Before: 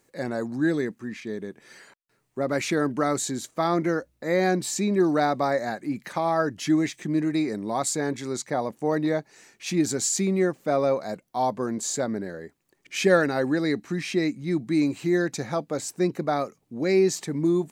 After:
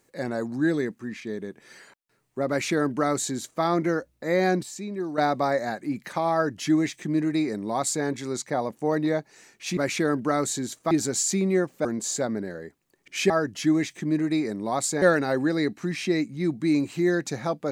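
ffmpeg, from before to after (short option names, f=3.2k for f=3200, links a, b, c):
-filter_complex "[0:a]asplit=8[a][b][c][d][e][f][g][h];[a]atrim=end=4.632[i];[b]atrim=start=4.628:end=5.182,asetpts=PTS-STARTPTS,volume=-9.5dB[j];[c]atrim=start=5.178:end=9.772[k];[d]atrim=start=2.488:end=3.632[l];[e]atrim=start=9.768:end=10.712[m];[f]atrim=start=11.638:end=13.092[n];[g]atrim=start=6.328:end=8.052[o];[h]atrim=start=13.088[p];[i][j]acrossfade=d=0.004:c1=hsin:c2=hsin[q];[q][k]acrossfade=d=0.004:c1=hsin:c2=hsin[r];[r][l]acrossfade=d=0.004:c1=hsin:c2=hsin[s];[s][m]acrossfade=d=0.004:c1=hsin:c2=hsin[t];[t][n]acrossfade=d=0.004:c1=hsin:c2=hsin[u];[u][o]acrossfade=d=0.004:c1=hsin:c2=hsin[v];[v][p]acrossfade=d=0.004:c1=hsin:c2=hsin"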